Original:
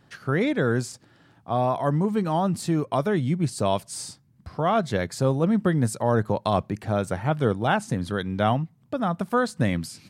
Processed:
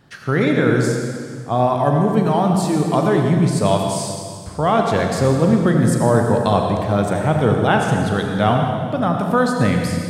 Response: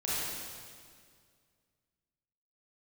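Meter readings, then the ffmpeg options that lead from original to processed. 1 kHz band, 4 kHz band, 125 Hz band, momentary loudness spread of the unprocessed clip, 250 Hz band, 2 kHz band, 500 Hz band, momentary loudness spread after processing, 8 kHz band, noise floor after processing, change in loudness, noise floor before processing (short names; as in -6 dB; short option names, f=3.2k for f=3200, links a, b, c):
+7.5 dB, +7.0 dB, +8.0 dB, 6 LU, +7.5 dB, +7.0 dB, +7.5 dB, 7 LU, +7.0 dB, -32 dBFS, +7.5 dB, -59 dBFS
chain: -filter_complex "[0:a]asplit=2[a][b];[1:a]atrim=start_sample=2205,adelay=40[c];[b][c]afir=irnorm=-1:irlink=0,volume=-9dB[d];[a][d]amix=inputs=2:normalize=0,volume=5dB"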